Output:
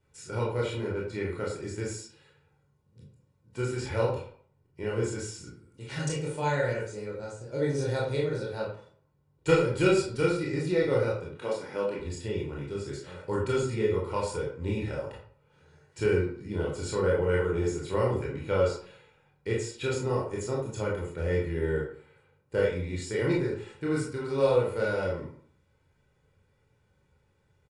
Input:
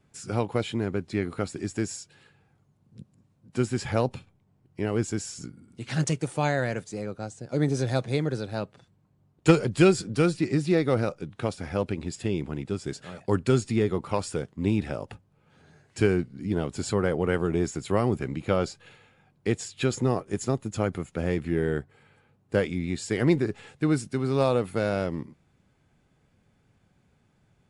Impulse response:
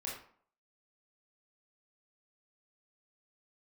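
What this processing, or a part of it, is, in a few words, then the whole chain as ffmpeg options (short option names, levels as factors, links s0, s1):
microphone above a desk: -filter_complex "[0:a]asettb=1/sr,asplit=3[s0][s1][s2];[s0]atrim=end=11.394[s3];[s1]atrim=start=11.39:end=12,asetpts=PTS-STARTPTS,afade=t=in:d=0.004:c=qsin,afade=t=out:st=0.606:d=0.004:c=qsin,highpass=f=170:w=0.5412,highpass=f=170:w=1.3066[s4];[s2]atrim=start=11.996[s5];[s3][s4]acrossfade=d=0.004:c1=hsin:c2=qsin[s6];[s6][s5]acrossfade=d=0.004:c1=qsin:c2=hsin,aecho=1:1:2.1:0.55[s7];[1:a]atrim=start_sample=2205[s8];[s7][s8]afir=irnorm=-1:irlink=0,volume=0.668"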